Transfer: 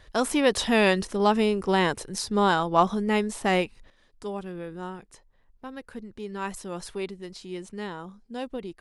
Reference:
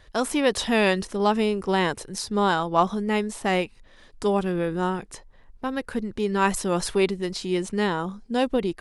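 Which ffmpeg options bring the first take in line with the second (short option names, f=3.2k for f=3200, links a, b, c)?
-af "asetnsamples=n=441:p=0,asendcmd='3.9 volume volume 11dB',volume=0dB"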